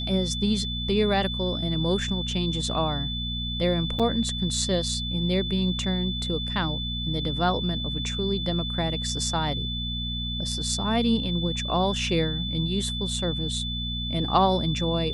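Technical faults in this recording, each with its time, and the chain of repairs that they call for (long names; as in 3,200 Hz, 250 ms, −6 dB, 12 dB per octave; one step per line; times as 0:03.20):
mains hum 60 Hz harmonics 4 −32 dBFS
whistle 3,500 Hz −31 dBFS
0:03.99–0:04.00: drop-out 6.1 ms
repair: hum removal 60 Hz, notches 4
notch filter 3,500 Hz, Q 30
repair the gap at 0:03.99, 6.1 ms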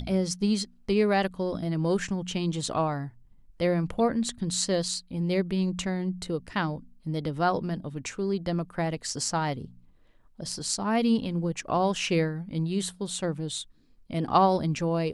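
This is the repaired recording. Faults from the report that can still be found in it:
none of them is left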